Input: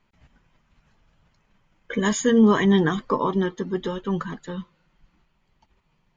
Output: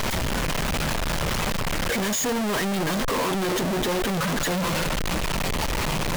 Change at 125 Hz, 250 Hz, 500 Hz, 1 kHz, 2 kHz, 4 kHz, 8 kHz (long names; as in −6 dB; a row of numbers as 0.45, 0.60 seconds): +2.0 dB, −4.5 dB, −1.5 dB, +3.0 dB, +5.0 dB, +9.5 dB, can't be measured